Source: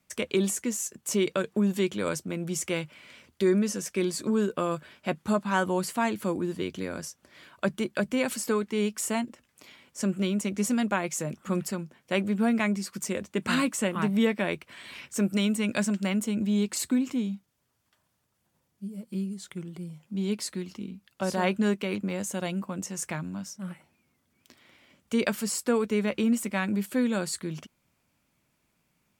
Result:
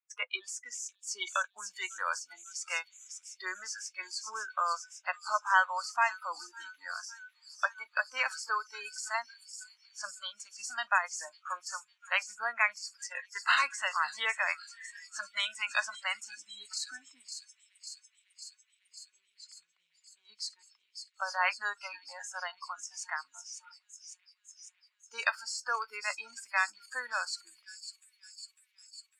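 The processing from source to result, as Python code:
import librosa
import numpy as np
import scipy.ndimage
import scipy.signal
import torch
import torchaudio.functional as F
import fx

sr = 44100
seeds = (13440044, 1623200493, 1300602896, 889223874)

p1 = scipy.signal.sosfilt(scipy.signal.butter(4, 1000.0, 'highpass', fs=sr, output='sos'), x)
p2 = fx.air_absorb(p1, sr, metres=120.0)
p3 = p2 + fx.echo_wet_highpass(p2, sr, ms=551, feedback_pct=81, hz=3200.0, wet_db=-5.5, dry=0)
p4 = fx.noise_reduce_blind(p3, sr, reduce_db=27)
p5 = fx.high_shelf(p4, sr, hz=9500.0, db=-8.5)
y = p5 * librosa.db_to_amplitude(6.0)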